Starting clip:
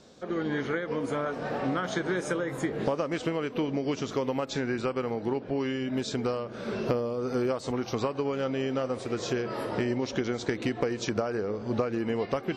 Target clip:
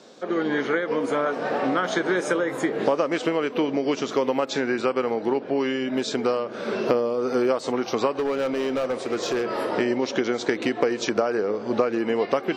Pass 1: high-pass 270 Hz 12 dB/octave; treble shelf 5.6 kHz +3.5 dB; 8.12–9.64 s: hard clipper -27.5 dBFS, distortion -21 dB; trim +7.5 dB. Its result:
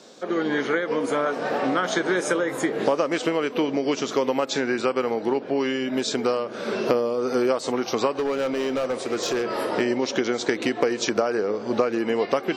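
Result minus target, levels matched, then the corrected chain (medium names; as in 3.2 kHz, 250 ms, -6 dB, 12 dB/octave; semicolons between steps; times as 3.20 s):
8 kHz band +4.5 dB
high-pass 270 Hz 12 dB/octave; treble shelf 5.6 kHz -4.5 dB; 8.12–9.64 s: hard clipper -27.5 dBFS, distortion -21 dB; trim +7.5 dB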